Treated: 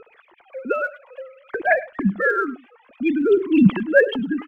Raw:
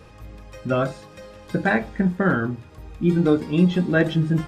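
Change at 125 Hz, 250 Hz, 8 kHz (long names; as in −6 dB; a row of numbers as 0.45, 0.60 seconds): −7.0 dB, +0.5 dB, can't be measured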